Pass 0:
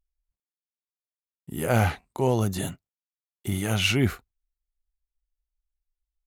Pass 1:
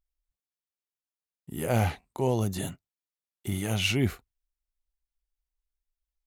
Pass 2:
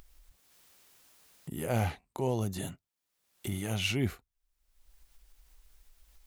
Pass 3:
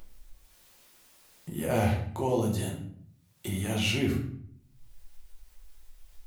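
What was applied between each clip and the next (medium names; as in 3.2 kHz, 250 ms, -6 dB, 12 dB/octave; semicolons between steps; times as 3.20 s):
dynamic bell 1.4 kHz, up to -6 dB, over -44 dBFS, Q 2.3; trim -3 dB
upward compressor, threshold -29 dBFS; trim -4.5 dB
simulated room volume 99 m³, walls mixed, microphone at 0.96 m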